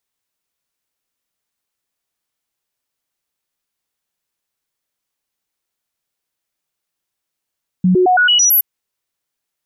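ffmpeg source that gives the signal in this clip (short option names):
-f lavfi -i "aevalsrc='0.376*clip(min(mod(t,0.11),0.11-mod(t,0.11))/0.005,0,1)*sin(2*PI*183*pow(2,floor(t/0.11)/1)*mod(t,0.11))':d=0.77:s=44100"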